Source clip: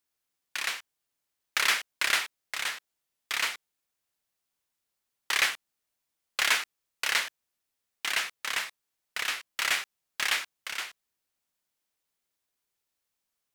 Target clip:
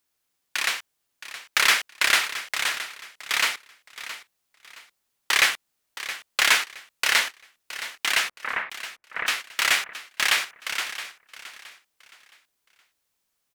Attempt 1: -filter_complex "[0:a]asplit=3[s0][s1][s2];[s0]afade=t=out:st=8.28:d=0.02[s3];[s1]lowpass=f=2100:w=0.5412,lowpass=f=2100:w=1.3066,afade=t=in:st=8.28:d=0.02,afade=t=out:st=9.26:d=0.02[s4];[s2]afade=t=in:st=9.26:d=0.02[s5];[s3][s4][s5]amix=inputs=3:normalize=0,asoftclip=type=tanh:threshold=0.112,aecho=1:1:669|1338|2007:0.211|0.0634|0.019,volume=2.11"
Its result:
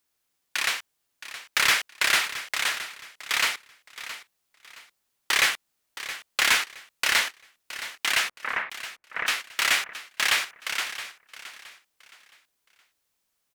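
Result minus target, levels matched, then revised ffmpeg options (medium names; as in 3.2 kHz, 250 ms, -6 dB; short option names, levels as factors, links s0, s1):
saturation: distortion +14 dB
-filter_complex "[0:a]asplit=3[s0][s1][s2];[s0]afade=t=out:st=8.28:d=0.02[s3];[s1]lowpass=f=2100:w=0.5412,lowpass=f=2100:w=1.3066,afade=t=in:st=8.28:d=0.02,afade=t=out:st=9.26:d=0.02[s4];[s2]afade=t=in:st=9.26:d=0.02[s5];[s3][s4][s5]amix=inputs=3:normalize=0,asoftclip=type=tanh:threshold=0.335,aecho=1:1:669|1338|2007:0.211|0.0634|0.019,volume=2.11"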